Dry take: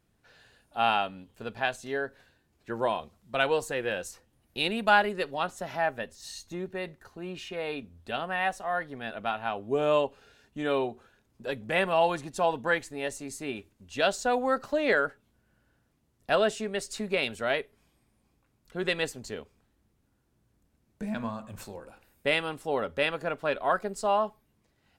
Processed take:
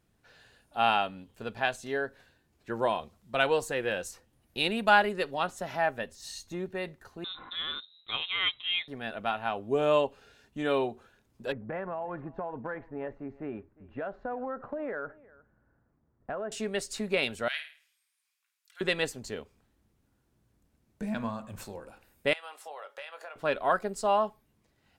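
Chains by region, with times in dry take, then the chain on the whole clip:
7.24–8.88 G.711 law mismatch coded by A + inverted band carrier 3900 Hz
11.52–16.52 LPF 1600 Hz 24 dB/oct + compressor 12:1, threshold -31 dBFS + echo 0.355 s -22.5 dB
17.48–18.81 Bessel high-pass 2200 Hz, order 4 + flutter echo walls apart 9.1 m, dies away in 0.42 s
22.33–23.36 HPF 600 Hz 24 dB/oct + compressor 10:1, threshold -39 dBFS + doubler 20 ms -10.5 dB
whole clip: dry

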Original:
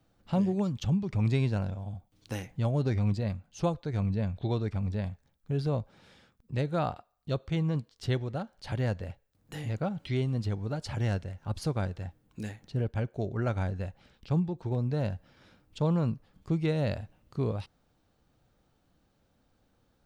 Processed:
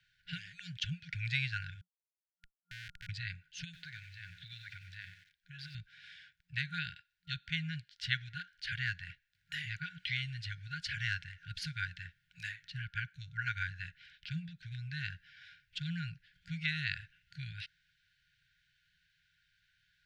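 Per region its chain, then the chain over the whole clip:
1.81–3.09 octave resonator A#, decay 0.5 s + dispersion lows, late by 98 ms, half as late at 800 Hz + Schmitt trigger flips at -38 dBFS
3.64–5.75 compressor 2.5:1, threshold -34 dBFS + low shelf 290 Hz -6 dB + lo-fi delay 94 ms, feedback 35%, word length 9-bit, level -9.5 dB
whole clip: FFT band-reject 180–1400 Hz; three-band isolator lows -21 dB, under 420 Hz, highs -19 dB, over 4400 Hz; gain +8.5 dB

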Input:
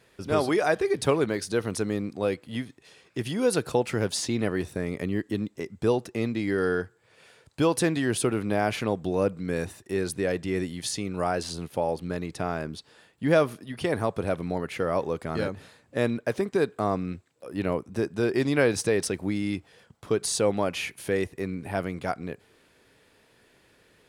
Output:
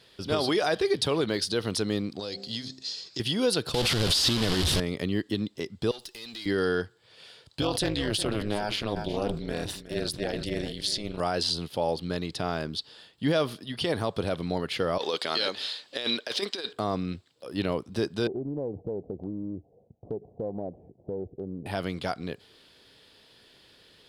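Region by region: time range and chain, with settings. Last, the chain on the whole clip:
2.19–3.2 band shelf 5500 Hz +15.5 dB 1.1 oct + de-hum 65.4 Hz, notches 12 + compressor 4:1, threshold -34 dBFS
3.74–4.8 delta modulation 64 kbps, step -22.5 dBFS + low shelf 100 Hz +10 dB
5.91–6.46 tilt +4.5 dB/oct + compressor, threshold -35 dBFS + tube stage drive 39 dB, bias 0.4
7.61–11.2 AM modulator 210 Hz, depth 90% + echo 0.364 s -15 dB + sustainer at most 75 dB/s
14.98–16.73 HPF 380 Hz + bell 4000 Hz +11 dB 2.1 oct + negative-ratio compressor -29 dBFS, ratio -0.5
18.27–21.66 Chebyshev low-pass 730 Hz, order 5 + compressor 3:1, threshold -31 dBFS + Doppler distortion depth 0.27 ms
whole clip: band shelf 3900 Hz +11 dB 1 oct; limiter -15.5 dBFS

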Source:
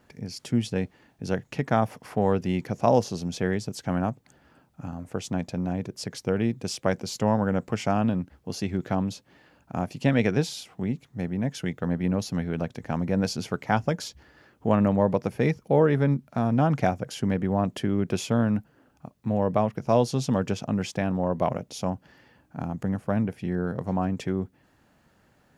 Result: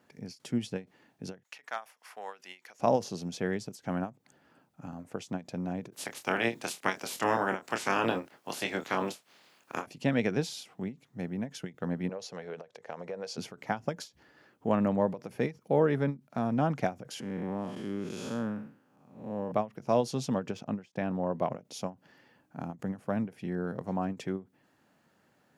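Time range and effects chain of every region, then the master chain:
1.43–2.8 HPF 1200 Hz + hard clip -18 dBFS
5.92–9.85 spectral limiter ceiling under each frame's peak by 24 dB + HPF 110 Hz + doubler 26 ms -7 dB
12.09–13.38 resonant low shelf 360 Hz -8.5 dB, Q 3 + compressor, threshold -29 dBFS + BPF 120–7700 Hz
17.2–19.52 time blur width 0.21 s + low shelf 160 Hz -6.5 dB + notch 670 Hz, Q 7.7
20.33–21.6 de-esser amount 95% + expander -42 dBFS + high shelf 5000 Hz -6.5 dB
whole clip: HPF 150 Hz 12 dB/oct; ending taper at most 270 dB/s; gain -4.5 dB

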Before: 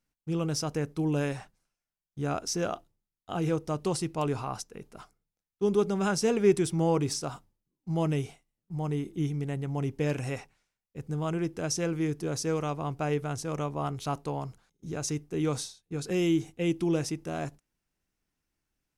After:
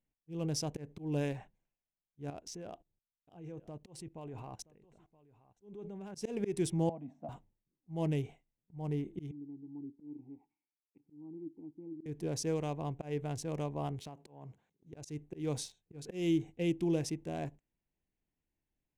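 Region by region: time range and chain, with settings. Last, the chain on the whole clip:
2.3–6.15 level quantiser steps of 20 dB + echo 0.973 s -20.5 dB
6.89–7.29 double band-pass 400 Hz, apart 1.5 oct + three-band squash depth 100%
9.31–12.06 treble ducked by the level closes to 440 Hz, closed at -29.5 dBFS + vowel filter u
14–14.93 HPF 110 Hz + compressor 5:1, threshold -38 dBFS
whole clip: Wiener smoothing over 9 samples; bell 1300 Hz -14 dB 0.44 oct; auto swell 0.18 s; gain -4 dB

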